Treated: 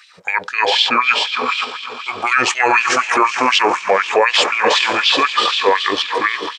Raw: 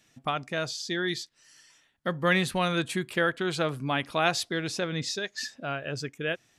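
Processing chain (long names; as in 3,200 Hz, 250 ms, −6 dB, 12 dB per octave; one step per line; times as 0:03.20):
feedback delay with all-pass diffusion 454 ms, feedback 51%, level −9 dB
in parallel at −3 dB: output level in coarse steps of 21 dB
on the sum: pitch shifter −6.5 semitones
auto-filter high-pass sine 4 Hz 460–3,100 Hz
boost into a limiter +18 dB
level −2 dB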